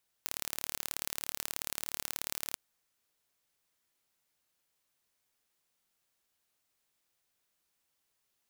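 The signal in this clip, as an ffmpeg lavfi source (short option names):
-f lavfi -i "aevalsrc='0.447*eq(mod(n,1198),0)*(0.5+0.5*eq(mod(n,2396),0))':d=2.29:s=44100"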